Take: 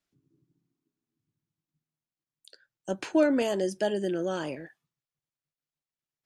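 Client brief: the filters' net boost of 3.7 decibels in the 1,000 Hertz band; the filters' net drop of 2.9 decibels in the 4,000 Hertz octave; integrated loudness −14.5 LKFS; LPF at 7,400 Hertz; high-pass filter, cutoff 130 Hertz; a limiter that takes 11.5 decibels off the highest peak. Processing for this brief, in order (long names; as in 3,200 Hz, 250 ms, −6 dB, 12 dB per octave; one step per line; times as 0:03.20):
high-pass filter 130 Hz
low-pass filter 7,400 Hz
parametric band 1,000 Hz +5 dB
parametric band 4,000 Hz −4.5 dB
level +18 dB
brickwall limiter −4.5 dBFS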